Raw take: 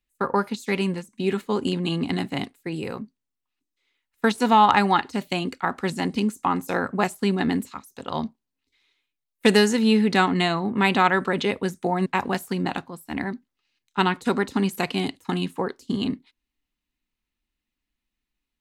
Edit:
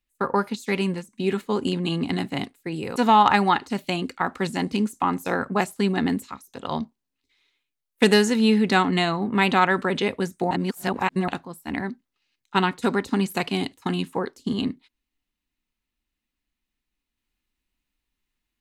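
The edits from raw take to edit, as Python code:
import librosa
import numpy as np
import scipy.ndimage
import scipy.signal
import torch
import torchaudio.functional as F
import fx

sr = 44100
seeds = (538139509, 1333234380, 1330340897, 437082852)

y = fx.edit(x, sr, fx.cut(start_s=2.96, length_s=1.43),
    fx.reverse_span(start_s=11.94, length_s=0.77), tone=tone)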